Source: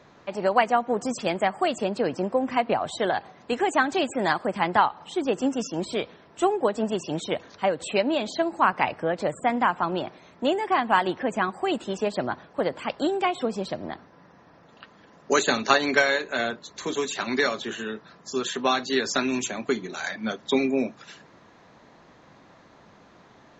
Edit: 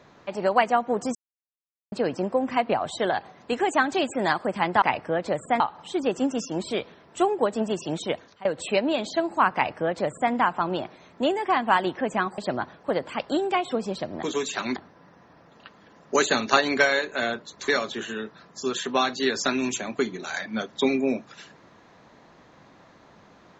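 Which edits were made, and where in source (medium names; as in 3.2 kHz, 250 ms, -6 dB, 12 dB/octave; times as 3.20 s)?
1.15–1.92 s: mute
7.34–7.67 s: fade out, to -22.5 dB
8.76–9.54 s: copy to 4.82 s
11.60–12.08 s: delete
16.85–17.38 s: move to 13.93 s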